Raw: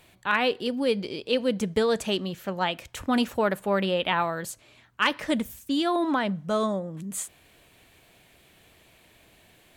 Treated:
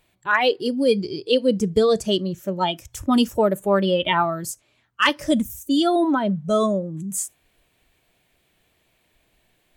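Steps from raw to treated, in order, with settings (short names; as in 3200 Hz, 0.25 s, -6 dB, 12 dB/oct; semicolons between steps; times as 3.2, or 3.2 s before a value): spectral noise reduction 15 dB; 1.45–2.43 high shelf 8700 Hz -8 dB; 5.09–5.63 upward compressor, threshold -29 dBFS; gain +6.5 dB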